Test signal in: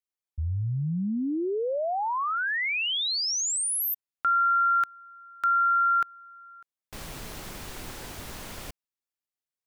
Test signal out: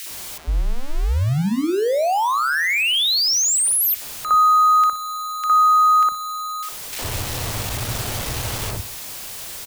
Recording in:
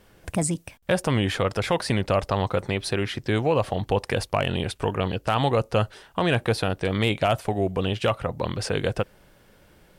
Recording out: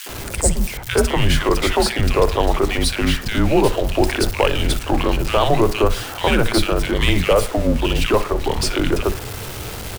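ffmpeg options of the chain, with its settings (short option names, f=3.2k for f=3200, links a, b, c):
-filter_complex "[0:a]aeval=exprs='val(0)+0.5*0.0299*sgn(val(0))':c=same,asplit=2[a][b];[b]adelay=60,lowpass=f=5k:p=1,volume=-16.5dB,asplit=2[c][d];[d]adelay=60,lowpass=f=5k:p=1,volume=0.41,asplit=2[e][f];[f]adelay=60,lowpass=f=5k:p=1,volume=0.41,asplit=2[g][h];[h]adelay=60,lowpass=f=5k:p=1,volume=0.41[i];[c][e][g][i]amix=inputs=4:normalize=0[j];[a][j]amix=inputs=2:normalize=0,afreqshift=-130,acrossover=split=260|1600[k][l][m];[l]adelay=60[n];[k]adelay=90[o];[o][n][m]amix=inputs=3:normalize=0,volume=7dB"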